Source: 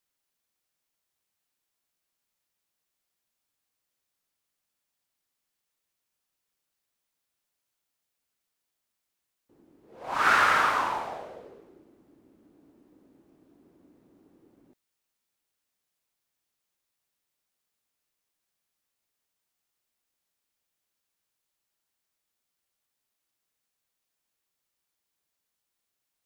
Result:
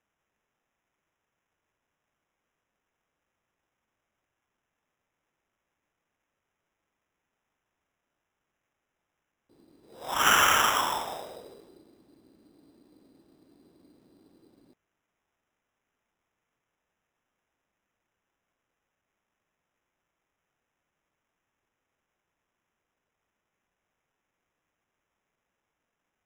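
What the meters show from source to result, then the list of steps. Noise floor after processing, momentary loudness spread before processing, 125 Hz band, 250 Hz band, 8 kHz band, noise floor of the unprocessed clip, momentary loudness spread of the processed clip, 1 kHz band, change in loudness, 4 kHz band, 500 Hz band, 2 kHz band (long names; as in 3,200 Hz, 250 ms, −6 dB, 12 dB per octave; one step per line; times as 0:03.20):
−84 dBFS, 17 LU, +2.5 dB, +1.0 dB, +13.0 dB, −83 dBFS, 17 LU, −1.0 dB, +0.5 dB, +8.5 dB, 0.0 dB, −1.5 dB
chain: decimation without filtering 10×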